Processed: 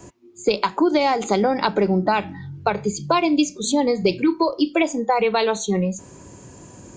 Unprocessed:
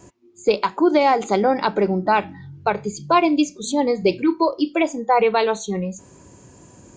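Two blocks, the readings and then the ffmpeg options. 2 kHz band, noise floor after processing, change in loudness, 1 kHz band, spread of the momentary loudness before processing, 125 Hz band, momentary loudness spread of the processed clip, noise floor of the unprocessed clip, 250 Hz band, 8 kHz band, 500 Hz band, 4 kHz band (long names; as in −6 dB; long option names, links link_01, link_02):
−0.5 dB, −45 dBFS, −1.0 dB, −2.5 dB, 9 LU, +3.0 dB, 6 LU, −49 dBFS, +0.5 dB, +4.0 dB, −1.0 dB, +3.0 dB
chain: -filter_complex "[0:a]acrossover=split=180|3000[link_01][link_02][link_03];[link_02]acompressor=threshold=-20dB:ratio=6[link_04];[link_01][link_04][link_03]amix=inputs=3:normalize=0,volume=4dB"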